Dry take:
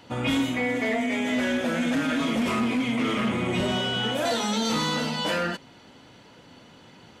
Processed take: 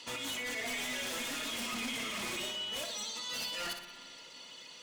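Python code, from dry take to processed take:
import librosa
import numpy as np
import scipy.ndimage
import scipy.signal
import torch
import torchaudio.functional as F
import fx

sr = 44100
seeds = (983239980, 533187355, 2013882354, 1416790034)

p1 = fx.weighting(x, sr, curve='ITU-R 468')
p2 = fx.dereverb_blind(p1, sr, rt60_s=0.83)
p3 = fx.peak_eq(p2, sr, hz=1500.0, db=-5.5, octaves=0.97)
p4 = fx.over_compress(p3, sr, threshold_db=-32.0, ratio=-1.0)
p5 = fx.notch_comb(p4, sr, f0_hz=780.0)
p6 = 10.0 ** (-29.5 / 20.0) * (np.abs((p5 / 10.0 ** (-29.5 / 20.0) + 3.0) % 4.0 - 2.0) - 1.0)
p7 = fx.stretch_vocoder(p6, sr, factor=0.67)
p8 = fx.dmg_crackle(p7, sr, seeds[0], per_s=400.0, level_db=-54.0)
p9 = p8 + fx.echo_feedback(p8, sr, ms=60, feedback_pct=45, wet_db=-8.0, dry=0)
p10 = fx.rev_spring(p9, sr, rt60_s=2.2, pass_ms=(34, 55), chirp_ms=35, drr_db=8.0)
y = p10 * 10.0 ** (-3.5 / 20.0)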